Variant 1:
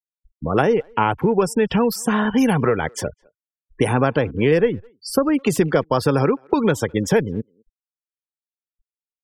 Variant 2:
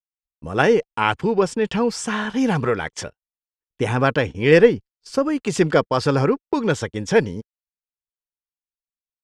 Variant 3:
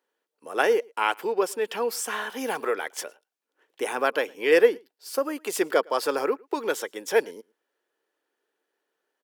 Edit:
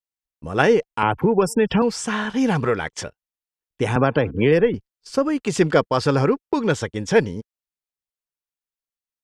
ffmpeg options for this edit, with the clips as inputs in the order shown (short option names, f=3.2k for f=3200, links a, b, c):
-filter_complex "[0:a]asplit=2[a][b];[1:a]asplit=3[c][d][e];[c]atrim=end=1.032[f];[a]atrim=start=1.028:end=1.822[g];[d]atrim=start=1.818:end=3.962[h];[b]atrim=start=3.958:end=4.742[i];[e]atrim=start=4.738[j];[f][g]acrossfade=d=0.004:c1=hsin:c2=hsin[k];[k][h]acrossfade=d=0.004:c1=hsin:c2=hsin[l];[l][i]acrossfade=d=0.004:c1=hsin:c2=hsin[m];[m][j]acrossfade=d=0.004:c1=hsin:c2=hsin"